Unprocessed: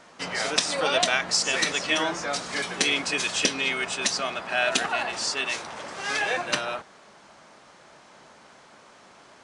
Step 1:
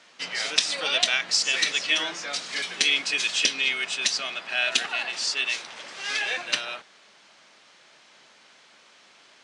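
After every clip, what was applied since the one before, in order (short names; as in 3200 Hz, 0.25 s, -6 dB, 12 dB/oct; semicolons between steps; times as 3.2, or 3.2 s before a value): weighting filter D; gain -8 dB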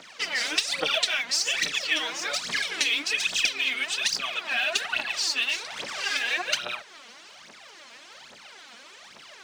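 compressor 2:1, threshold -37 dBFS, peak gain reduction 12 dB; phaser 1.2 Hz, delay 4.4 ms, feedback 76%; gain +3.5 dB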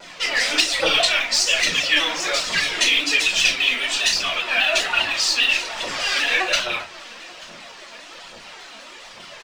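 echo 0.885 s -23 dB; shoebox room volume 160 m³, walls furnished, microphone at 4.6 m; shaped vibrato saw down 5 Hz, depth 100 cents; gain -1.5 dB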